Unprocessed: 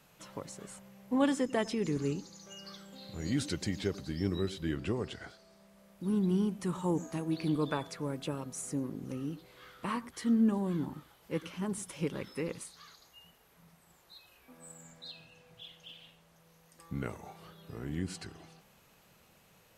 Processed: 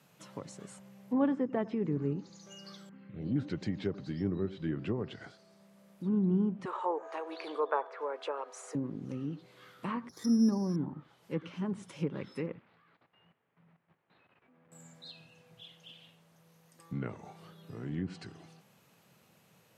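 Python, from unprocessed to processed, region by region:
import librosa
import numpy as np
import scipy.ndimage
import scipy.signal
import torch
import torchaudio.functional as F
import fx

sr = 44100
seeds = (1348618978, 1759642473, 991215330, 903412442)

y = fx.chain(x, sr, fx.lowpass(hz=3000.0, slope=24),
    fx.env_phaser(low_hz=500.0, high_hz=2000.0, full_db=-34.5), at=(2.89, 3.36))
y = fx.chain(y, sr, fx.cheby1_highpass(hz=420.0, order=4),
    fx.peak_eq(hz=1000.0, db=9.5, octaves=2.4), at=(6.65, 8.75))
y = fx.chain(y, sr, fx.env_lowpass(base_hz=1100.0, full_db=-22.5),
    fx.resample_bad(factor=8, down='filtered', up='zero_stuff'), at=(10.09, 10.76))
y = fx.chain(y, sr, fx.cvsd(bps=32000),
    fx.lowpass(hz=2400.0, slope=24),
    fx.level_steps(step_db=13), at=(12.46, 14.72))
y = fx.env_lowpass_down(y, sr, base_hz=1400.0, full_db=-28.5)
y = scipy.signal.sosfilt(scipy.signal.butter(4, 110.0, 'highpass', fs=sr, output='sos'), y)
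y = fx.low_shelf(y, sr, hz=240.0, db=6.0)
y = y * librosa.db_to_amplitude(-2.5)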